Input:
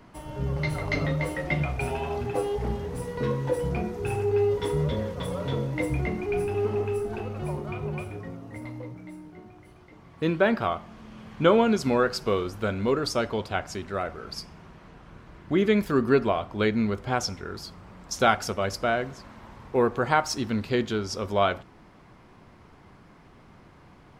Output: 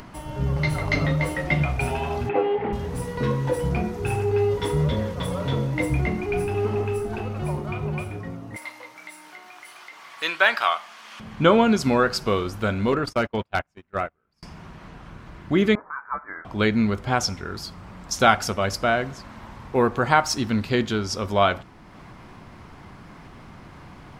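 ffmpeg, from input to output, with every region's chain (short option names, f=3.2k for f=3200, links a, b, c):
-filter_complex "[0:a]asettb=1/sr,asplit=3[a][b][c];[a]atrim=end=2.294[d];[b]atrim=start=2.29:end=2.73,asetpts=PTS-STARTPTS,afade=t=in:d=0.004:c=qsin,afade=t=out:st=0.436:d=0.004:c=qsin,acontrast=68,highpass=320,equalizer=f=630:t=q:w=4:g=-7,equalizer=f=1.1k:t=q:w=4:g=-7,equalizer=f=1.6k:t=q:w=4:g=-5,lowpass=f=2.5k:w=0.5412,lowpass=f=2.5k:w=1.3066[e];[c]atrim=start=2.726[f];[d][e]acrossfade=d=0.004:c1=hsin:c2=qsin[g];[g][f]acrossfade=d=0.004:c1=qsin:c2=hsin,asettb=1/sr,asplit=3[h][i][j];[h]atrim=end=8.564[k];[i]atrim=start=8.56:end=11.2,asetpts=PTS-STARTPTS,afade=t=in:d=0.004:c=qsin,afade=t=out:st=2.636:d=0.004:c=qsin,highpass=920,tiltshelf=f=1.4k:g=-3.5,acontrast=35[l];[j]atrim=start=11.196[m];[k][l]acrossfade=d=0.004:c1=hsin:c2=qsin[n];[n][m]acrossfade=d=0.004:c1=qsin:c2=hsin,asettb=1/sr,asplit=3[o][p][q];[o]atrim=end=12.924[r];[p]atrim=start=12.92:end=14.43,asetpts=PTS-STARTPTS,afade=t=in:d=0.004:c=qsin,afade=t=out:st=1.506:d=0.004:c=qsin,agate=range=-37dB:threshold=-30dB:ratio=16:release=100:detection=peak,highshelf=f=3.3k:t=q:w=1.5:g=-6,volume=17dB,asoftclip=hard,volume=-17dB[s];[q]atrim=start=14.426[t];[r][s]acrossfade=d=0.004:c1=hsin:c2=qsin[u];[u][t]acrossfade=d=0.004:c1=qsin:c2=hsin,asettb=1/sr,asplit=3[v][w][x];[v]atrim=end=15.754[y];[w]atrim=start=15.75:end=16.45,asetpts=PTS-STARTPTS,afade=t=in:d=0.004:c=qsin,afade=t=out:st=0.696:d=0.004:c=qsin,highpass=f=1.4k:w=0.5412,highpass=f=1.4k:w=1.3066,lowpass=f=2.3k:t=q:w=0.5098,lowpass=f=2.3k:t=q:w=0.6013,lowpass=f=2.3k:t=q:w=0.9,lowpass=f=2.3k:t=q:w=2.563,afreqshift=-2700[z];[x]atrim=start=16.446[aa];[y][z]acrossfade=d=0.004:c1=hsin:c2=qsin[ab];[ab][aa]acrossfade=d=0.004:c1=qsin:c2=hsin,acompressor=mode=upward:threshold=-41dB:ratio=2.5,equalizer=f=440:t=o:w=0.93:g=-4,volume=5dB"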